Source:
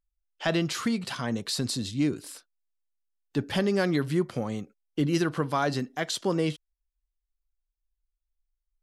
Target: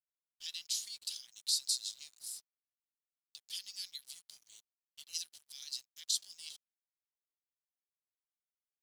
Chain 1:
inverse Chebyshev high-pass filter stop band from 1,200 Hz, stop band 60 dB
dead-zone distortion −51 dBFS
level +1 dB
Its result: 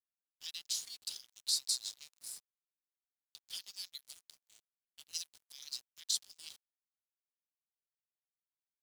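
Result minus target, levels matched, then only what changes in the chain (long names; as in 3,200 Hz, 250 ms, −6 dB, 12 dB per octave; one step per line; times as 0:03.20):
dead-zone distortion: distortion +8 dB
change: dead-zone distortion −60.5 dBFS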